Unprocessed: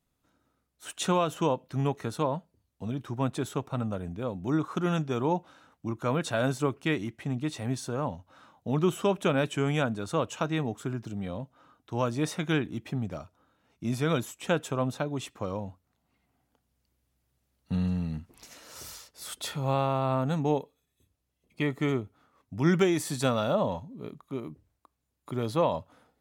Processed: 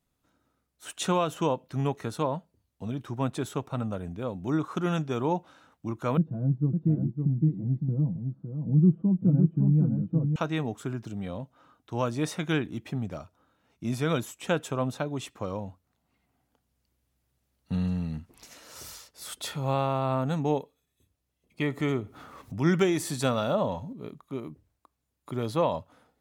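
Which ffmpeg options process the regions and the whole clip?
-filter_complex "[0:a]asettb=1/sr,asplit=3[a][b][c];[a]atrim=end=6.174[d];[b]atrim=start=6.17:end=10.36,asetpts=PTS-STARTPTS,afade=t=in:d=0.004:c=qsin,afade=t=out:st=4.186:d=0.004:c=qsin,lowpass=f=200:t=q:w=2.1,aecho=1:1:6.1:0.64,atrim=end_sample=184779,aecho=1:1:559:0.562,atrim=end_sample=184779[e];[c]atrim=start=10.356[f];[d][e]acrossfade=d=0.004:c1=hsin:c2=qsin[g];[g][f]acrossfade=d=0.004:c1=qsin:c2=hsin,asettb=1/sr,asplit=3[h][i][j];[h]atrim=end=21.644[k];[i]atrim=start=21.64:end=23.93,asetpts=PTS-STARTPTS,afade=t=in:d=0.004:c=qsin,afade=t=out:st=2.286:d=0.004:c=qsin,acompressor=mode=upward:threshold=-30dB:ratio=2.5:attack=3.2:release=140:knee=2.83:detection=peak,asplit=2[l][m];[m]adelay=70,lowpass=f=3.3k:p=1,volume=-23.5dB,asplit=2[n][o];[o]adelay=70,lowpass=f=3.3k:p=1,volume=0.46,asplit=2[p][q];[q]adelay=70,lowpass=f=3.3k:p=1,volume=0.46[r];[l][n][p][r]amix=inputs=4:normalize=0,atrim=end_sample=100989[s];[j]atrim=start=23.926[t];[k][s]acrossfade=d=0.004:c1=hsin:c2=qsin[u];[u][t]acrossfade=d=0.004:c1=qsin:c2=hsin"

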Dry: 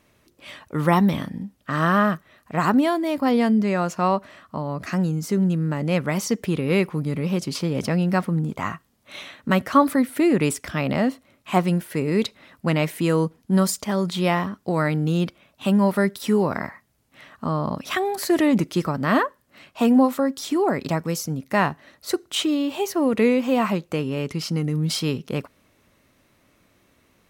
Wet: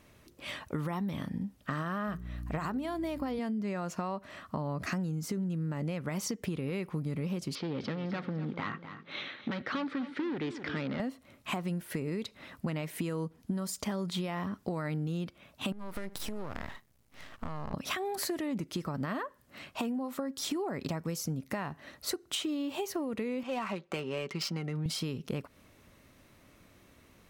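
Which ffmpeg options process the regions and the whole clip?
-filter_complex "[0:a]asettb=1/sr,asplit=3[a][b][c];[a]atrim=end=2.074[d];[b]atrim=start=2.07:end=3.39,asetpts=PTS-STARTPTS,afade=t=in:d=0.004:c=qsin,afade=t=out:st=1.316:d=0.004:c=qsin,bandreject=f=60:t=h:w=6,bandreject=f=120:t=h:w=6,bandreject=f=180:t=h:w=6,bandreject=f=240:t=h:w=6,bandreject=f=300:t=h:w=6,bandreject=f=360:t=h:w=6,bandreject=f=420:t=h:w=6,aeval=exprs='val(0)+0.00891*(sin(2*PI*60*n/s)+sin(2*PI*2*60*n/s)/2+sin(2*PI*3*60*n/s)/3+sin(2*PI*4*60*n/s)/4+sin(2*PI*5*60*n/s)/5)':c=same[e];[c]atrim=start=3.386[f];[d][e]acrossfade=d=0.004:c1=hsin:c2=qsin[g];[g][f]acrossfade=d=0.004:c1=qsin:c2=hsin,asettb=1/sr,asplit=3[h][i][j];[h]atrim=end=7.554[k];[i]atrim=start=7.55:end=11,asetpts=PTS-STARTPTS,afade=t=in:d=0.004:c=qsin,afade=t=out:st=3.446:d=0.004:c=qsin,asoftclip=type=hard:threshold=-22dB,highpass=180,equalizer=f=180:t=q:w=4:g=-7,equalizer=f=660:t=q:w=4:g=-8,equalizer=f=1k:t=q:w=4:g=-6,equalizer=f=2.7k:t=q:w=4:g=-4,lowpass=f=4.1k:w=0.5412,lowpass=f=4.1k:w=1.3066,aecho=1:1:252|504|756:0.188|0.0697|0.0258,atrim=end_sample=152145[l];[j]atrim=start=10.996[m];[k][l]acrossfade=d=0.004:c1=hsin:c2=qsin[n];[n][m]acrossfade=d=0.004:c1=qsin:c2=hsin,asettb=1/sr,asplit=3[o][p][q];[o]atrim=end=15.724[r];[p]atrim=start=15.72:end=17.74,asetpts=PTS-STARTPTS,afade=t=in:d=0.004:c=qsin,afade=t=out:st=2.016:d=0.004:c=qsin,aeval=exprs='max(val(0),0)':c=same,acompressor=threshold=-32dB:ratio=12:attack=3.2:release=140:knee=1:detection=peak[s];[q]atrim=start=17.736[t];[r][s]acrossfade=d=0.004:c1=hsin:c2=qsin[u];[u][t]acrossfade=d=0.004:c1=qsin:c2=hsin,asettb=1/sr,asplit=3[v][w][x];[v]atrim=end=23.434[y];[w]atrim=start=23.43:end=24.86,asetpts=PTS-STARTPTS,afade=t=in:d=0.004:c=qsin,afade=t=out:st=1.426:d=0.004:c=qsin,highpass=f=670:p=1,aecho=1:1:5.2:0.47,atrim=end_sample=63063,adynamicsmooth=sensitivity=6.5:basefreq=3k[z];[x]atrim=start=24.856[aa];[y][z]acrossfade=d=0.004:c1=hsin:c2=qsin[ab];[ab][aa]acrossfade=d=0.004:c1=qsin:c2=hsin,alimiter=limit=-17dB:level=0:latency=1:release=234,lowshelf=f=130:g=5,acompressor=threshold=-31dB:ratio=12"

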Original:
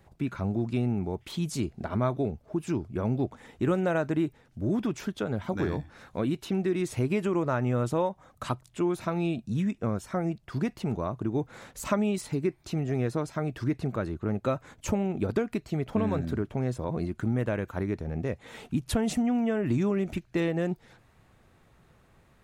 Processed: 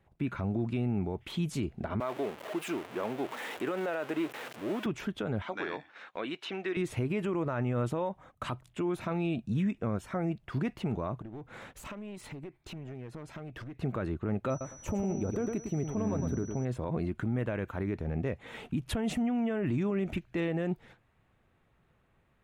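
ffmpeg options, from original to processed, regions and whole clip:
-filter_complex "[0:a]asettb=1/sr,asplit=3[a][b][c];[a]atrim=end=2.004[d];[b]atrim=start=2:end=4.86,asetpts=PTS-STARTPTS,afade=t=in:d=0.004:c=qsin,afade=t=out:st=2.856:d=0.004:c=qsin,aeval=exprs='val(0)+0.5*0.02*sgn(val(0))':c=same,highpass=420[e];[c]atrim=start=4.856[f];[d][e]acrossfade=d=0.004:c1=hsin:c2=qsin[g];[g][f]acrossfade=d=0.004:c1=qsin:c2=hsin,asettb=1/sr,asplit=3[h][i][j];[h]atrim=end=5.424[k];[i]atrim=start=5.42:end=6.77,asetpts=PTS-STARTPTS,afade=t=in:d=0.004:c=qsin,afade=t=out:st=1.346:d=0.004:c=qsin,highpass=350,lowpass=5k,tiltshelf=f=940:g=-5.5[l];[j]atrim=start=6.766[m];[k][l]acrossfade=d=0.004:c1=hsin:c2=qsin[n];[n][m]acrossfade=d=0.004:c1=qsin:c2=hsin,asettb=1/sr,asplit=3[o][p][q];[o]atrim=end=11.214[r];[p]atrim=start=11.21:end=13.83,asetpts=PTS-STARTPTS,afade=t=in:d=0.004:c=qsin,afade=t=out:st=2.616:d=0.004:c=qsin,acompressor=threshold=-38dB:ratio=10:attack=3.2:release=140:knee=1:detection=peak,aeval=exprs='clip(val(0),-1,0.00891)':c=same[s];[q]atrim=start=13.826[t];[r][s]acrossfade=d=0.004:c1=hsin:c2=qsin[u];[u][t]acrossfade=d=0.004:c1=qsin:c2=hsin,asettb=1/sr,asplit=3[v][w][x];[v]atrim=end=14.504[y];[w]atrim=start=14.5:end=16.65,asetpts=PTS-STARTPTS,afade=t=in:d=0.004:c=qsin,afade=t=out:st=2.146:d=0.004:c=qsin,equalizer=f=3k:w=0.52:g=-9.5,aeval=exprs='val(0)+0.00708*sin(2*PI*5900*n/s)':c=same,aecho=1:1:107|214|321:0.355|0.0745|0.0156,atrim=end_sample=94815[z];[x]atrim=start=16.646[aa];[y][z]acrossfade=d=0.004:c1=hsin:c2=qsin[ab];[ab][aa]acrossfade=d=0.004:c1=qsin:c2=hsin,agate=range=-9dB:threshold=-51dB:ratio=16:detection=peak,highshelf=f=3.8k:t=q:w=1.5:g=-6,alimiter=limit=-23.5dB:level=0:latency=1:release=38"

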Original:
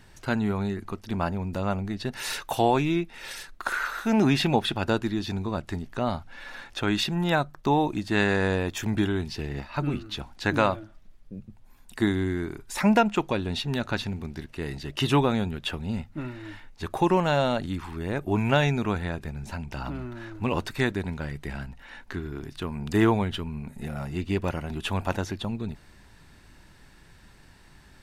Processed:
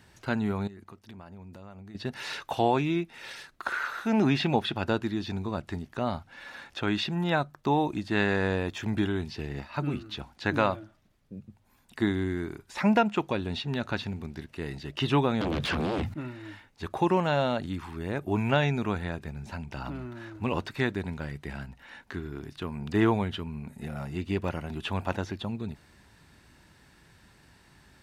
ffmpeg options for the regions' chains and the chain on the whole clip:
-filter_complex "[0:a]asettb=1/sr,asplit=3[a][b][c];[a]atrim=end=0.674[d];[b]atrim=start=0.67:end=1.95,asetpts=PTS-STARTPTS,afade=t=in:d=0.004:c=qsin,afade=t=out:st=1.276:d=0.004:c=qsin,agate=range=-8dB:threshold=-41dB:ratio=16:release=100:detection=peak,acompressor=threshold=-40dB:ratio=10:attack=3.2:release=140:knee=1:detection=peak[e];[c]atrim=start=1.946[f];[d][e]acrossfade=d=0.004:c1=hsin:c2=qsin[g];[g][f]acrossfade=d=0.004:c1=qsin:c2=hsin,asettb=1/sr,asplit=3[h][i][j];[h]atrim=end=15.414[k];[i]atrim=start=15.41:end=16.14,asetpts=PTS-STARTPTS,afade=t=in:d=0.004:c=qsin,afade=t=out:st=0.726:d=0.004:c=qsin,equalizer=f=110:t=o:w=1.2:g=6,acompressor=threshold=-29dB:ratio=6:attack=3.2:release=140:knee=1:detection=peak,aeval=exprs='0.0794*sin(PI/2*5.01*val(0)/0.0794)':c=same[l];[j]atrim=start=16.136[m];[k][l]acrossfade=d=0.004:c1=hsin:c2=qsin[n];[n][m]acrossfade=d=0.004:c1=qsin:c2=hsin,highpass=60,acrossover=split=5300[o][p];[p]acompressor=threshold=-55dB:ratio=4:attack=1:release=60[q];[o][q]amix=inputs=2:normalize=0,volume=-2.5dB"

